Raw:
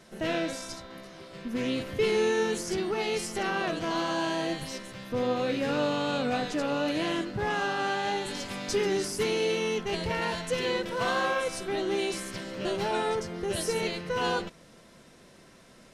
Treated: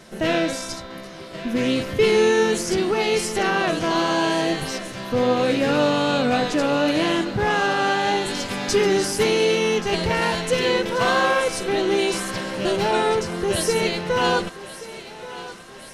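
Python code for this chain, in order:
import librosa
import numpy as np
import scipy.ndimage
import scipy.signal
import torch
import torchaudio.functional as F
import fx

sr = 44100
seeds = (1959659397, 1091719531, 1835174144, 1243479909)

y = fx.echo_thinned(x, sr, ms=1130, feedback_pct=65, hz=350.0, wet_db=-15)
y = y * 10.0 ** (8.5 / 20.0)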